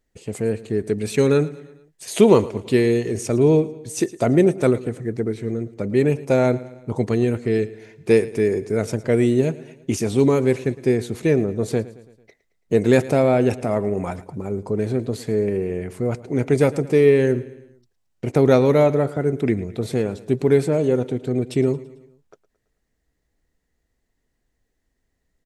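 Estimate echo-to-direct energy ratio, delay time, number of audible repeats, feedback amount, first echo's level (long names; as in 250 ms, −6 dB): −17.0 dB, 111 ms, 3, 52%, −18.5 dB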